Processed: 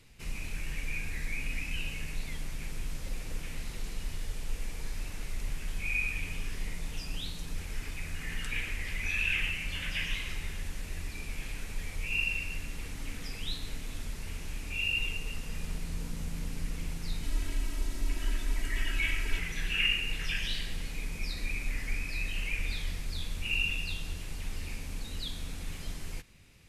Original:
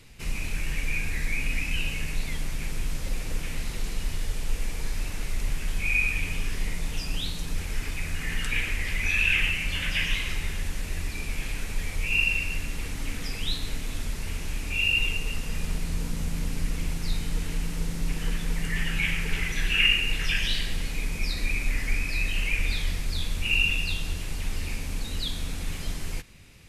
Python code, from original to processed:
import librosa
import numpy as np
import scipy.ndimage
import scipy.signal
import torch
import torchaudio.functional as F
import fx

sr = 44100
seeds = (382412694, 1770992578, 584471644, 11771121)

y = fx.comb(x, sr, ms=3.1, depth=0.85, at=(17.23, 19.39))
y = y * 10.0 ** (-7.0 / 20.0)